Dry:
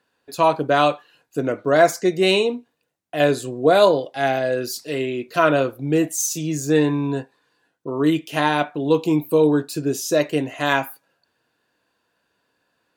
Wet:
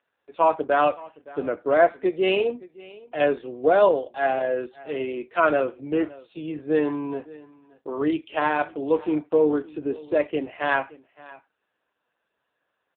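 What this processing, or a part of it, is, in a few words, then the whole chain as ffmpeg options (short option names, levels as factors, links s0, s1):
satellite phone: -af "highpass=320,lowpass=3100,aecho=1:1:567:0.0891,volume=0.841" -ar 8000 -c:a libopencore_amrnb -b:a 5900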